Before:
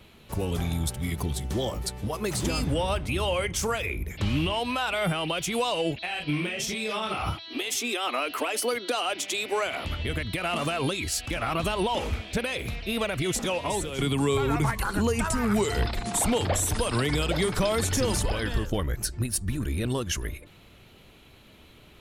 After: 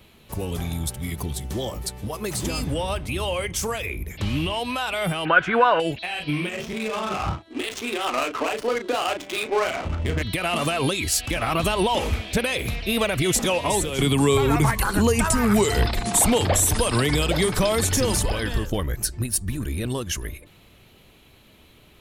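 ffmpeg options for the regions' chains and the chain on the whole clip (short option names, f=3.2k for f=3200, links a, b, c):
-filter_complex "[0:a]asettb=1/sr,asplit=3[a][b][c];[a]atrim=end=5.254[d];[b]atrim=start=5.25:end=5.8,asetpts=PTS-STARTPTS,afade=t=in:d=0.004:c=qsin,afade=t=out:st=0.546:d=0.004:c=qsin,lowshelf=f=190:g=-9,acontrast=63,lowpass=f=1.5k:t=q:w=11[e];[c]atrim=start=5.796[f];[d][e]acrossfade=d=0.004:c1=hsin:c2=qsin[g];[g][f]acrossfade=d=0.004:c1=qsin:c2=hsin,asettb=1/sr,asplit=3[h][i][j];[h]atrim=end=6.494[k];[i]atrim=start=6.49:end=10.22,asetpts=PTS-STARTPTS,afade=t=in:d=0.004:c=qsin,afade=t=out:st=3.726:d=0.004:c=qsin,asplit=2[l][m];[m]adelay=36,volume=-5dB[n];[l][n]amix=inputs=2:normalize=0,atrim=end_sample=164493,adynamicsmooth=sensitivity=3.5:basefreq=570[o];[j]atrim=start=10.216[p];[k][o]acrossfade=d=0.004:c1=hsin:c2=qsin[q];[q][p]acrossfade=d=0.004:c1=qsin:c2=hsin,dynaudnorm=f=840:g=13:m=6dB,highshelf=f=10k:g=7,bandreject=f=1.4k:w=24"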